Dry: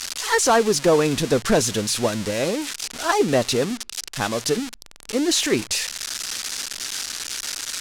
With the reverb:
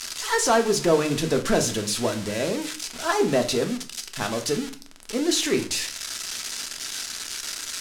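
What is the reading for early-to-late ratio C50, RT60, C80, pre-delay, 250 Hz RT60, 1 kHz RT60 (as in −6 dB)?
13.0 dB, 0.45 s, 17.0 dB, 3 ms, 0.60 s, 0.45 s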